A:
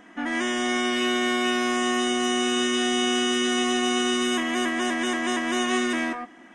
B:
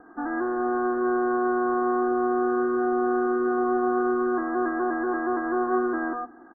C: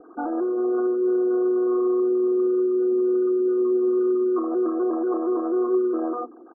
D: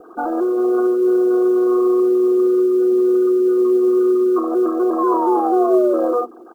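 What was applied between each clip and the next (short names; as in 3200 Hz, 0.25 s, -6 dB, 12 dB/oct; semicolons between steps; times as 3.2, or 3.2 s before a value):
steep low-pass 1600 Hz 96 dB/oct; notches 60/120/180/240 Hz; comb 2.5 ms, depth 61%
formant sharpening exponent 3; Chebyshev low-pass 1500 Hz, order 6; gain +3 dB
bell 280 Hz -9.5 dB 0.31 oct; painted sound fall, 4.98–6.22, 470–1100 Hz -28 dBFS; companded quantiser 8-bit; gain +7.5 dB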